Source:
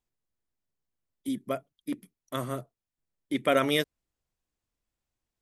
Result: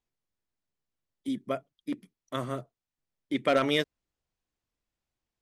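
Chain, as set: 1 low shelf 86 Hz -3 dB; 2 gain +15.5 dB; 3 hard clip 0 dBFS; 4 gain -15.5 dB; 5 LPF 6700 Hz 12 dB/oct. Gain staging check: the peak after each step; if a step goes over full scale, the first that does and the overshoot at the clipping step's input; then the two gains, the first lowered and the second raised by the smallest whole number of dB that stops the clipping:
-10.5, +5.0, 0.0, -15.5, -15.0 dBFS; step 2, 5.0 dB; step 2 +10.5 dB, step 4 -10.5 dB

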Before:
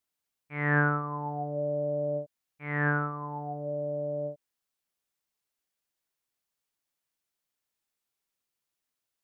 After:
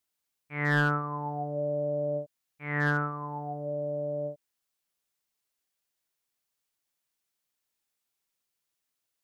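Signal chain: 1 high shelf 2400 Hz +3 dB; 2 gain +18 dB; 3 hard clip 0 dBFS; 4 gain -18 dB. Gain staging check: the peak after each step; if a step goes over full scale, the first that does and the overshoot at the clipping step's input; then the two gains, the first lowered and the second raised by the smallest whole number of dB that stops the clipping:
-12.0, +6.0, 0.0, -18.0 dBFS; step 2, 6.0 dB; step 2 +12 dB, step 4 -12 dB

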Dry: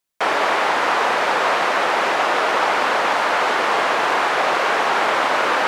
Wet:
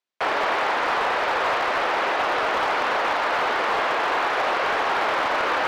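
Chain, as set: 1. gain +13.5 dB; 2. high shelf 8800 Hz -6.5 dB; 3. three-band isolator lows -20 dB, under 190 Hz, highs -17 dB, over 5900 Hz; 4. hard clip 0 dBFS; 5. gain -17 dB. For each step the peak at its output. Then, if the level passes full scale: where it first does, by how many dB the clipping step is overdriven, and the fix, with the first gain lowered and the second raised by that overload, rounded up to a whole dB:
+7.5, +7.0, +7.5, 0.0, -17.0 dBFS; step 1, 7.5 dB; step 1 +5.5 dB, step 5 -9 dB

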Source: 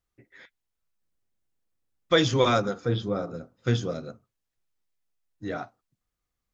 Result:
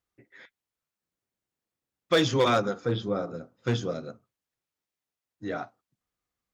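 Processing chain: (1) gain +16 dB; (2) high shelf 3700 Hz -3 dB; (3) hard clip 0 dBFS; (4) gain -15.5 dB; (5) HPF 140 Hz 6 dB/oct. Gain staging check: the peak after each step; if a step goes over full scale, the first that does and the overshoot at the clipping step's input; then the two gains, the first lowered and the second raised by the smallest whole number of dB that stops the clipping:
+8.0, +7.5, 0.0, -15.5, -12.5 dBFS; step 1, 7.5 dB; step 1 +8 dB, step 4 -7.5 dB

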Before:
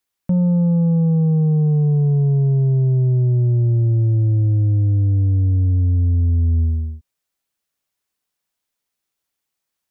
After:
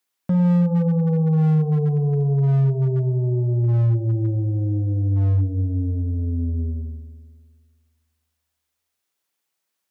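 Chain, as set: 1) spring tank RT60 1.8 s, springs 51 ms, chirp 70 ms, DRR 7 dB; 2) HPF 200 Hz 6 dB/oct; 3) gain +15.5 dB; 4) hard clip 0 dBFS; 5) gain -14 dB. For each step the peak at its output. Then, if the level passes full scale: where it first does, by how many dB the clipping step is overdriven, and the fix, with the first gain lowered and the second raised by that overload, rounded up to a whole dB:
-7.5, -9.5, +6.0, 0.0, -14.0 dBFS; step 3, 6.0 dB; step 3 +9.5 dB, step 5 -8 dB

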